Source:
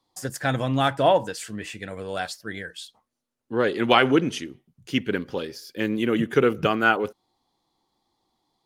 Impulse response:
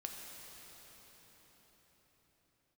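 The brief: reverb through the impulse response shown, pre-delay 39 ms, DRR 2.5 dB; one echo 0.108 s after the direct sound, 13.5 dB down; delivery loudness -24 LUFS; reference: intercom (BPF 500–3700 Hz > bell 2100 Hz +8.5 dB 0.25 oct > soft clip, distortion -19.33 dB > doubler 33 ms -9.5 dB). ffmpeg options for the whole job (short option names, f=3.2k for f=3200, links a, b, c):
-filter_complex "[0:a]aecho=1:1:108:0.211,asplit=2[a][b];[1:a]atrim=start_sample=2205,adelay=39[c];[b][c]afir=irnorm=-1:irlink=0,volume=-1dB[d];[a][d]amix=inputs=2:normalize=0,highpass=500,lowpass=3.7k,equalizer=f=2.1k:t=o:w=0.25:g=8.5,asoftclip=threshold=-8.5dB,asplit=2[e][f];[f]adelay=33,volume=-9.5dB[g];[e][g]amix=inputs=2:normalize=0,volume=1dB"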